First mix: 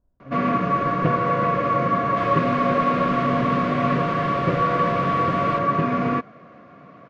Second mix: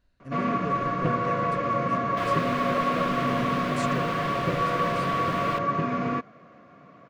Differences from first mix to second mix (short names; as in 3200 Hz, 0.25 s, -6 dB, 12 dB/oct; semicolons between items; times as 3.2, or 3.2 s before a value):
speech: remove LPF 1000 Hz 24 dB/oct; first sound -5.5 dB; master: remove air absorption 93 m